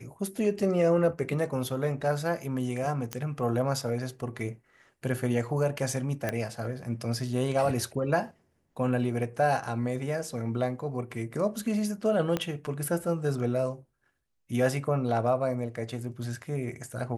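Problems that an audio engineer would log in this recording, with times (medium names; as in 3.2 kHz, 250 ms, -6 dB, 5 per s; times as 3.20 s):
3.13 s: pop -16 dBFS
6.29 s: pop -15 dBFS
12.37 s: pop -14 dBFS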